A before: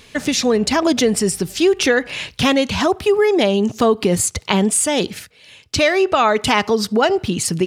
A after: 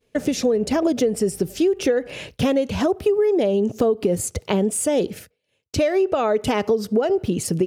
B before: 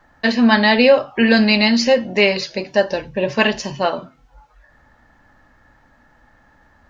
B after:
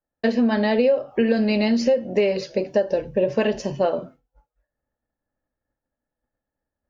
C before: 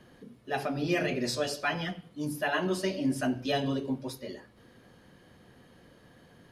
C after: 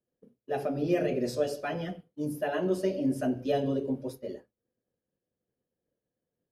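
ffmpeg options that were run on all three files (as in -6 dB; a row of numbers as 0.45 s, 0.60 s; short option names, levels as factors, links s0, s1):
-af "equalizer=f=500:t=o:w=1:g=8,equalizer=f=1000:t=o:w=1:g=-7,equalizer=f=2000:t=o:w=1:g=-5,equalizer=f=4000:t=o:w=1:g=-8,equalizer=f=8000:t=o:w=1:g=-5,agate=range=0.0224:threshold=0.0158:ratio=3:detection=peak,acompressor=threshold=0.178:ratio=6,volume=0.891"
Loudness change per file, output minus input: -4.0 LU, -5.5 LU, +0.5 LU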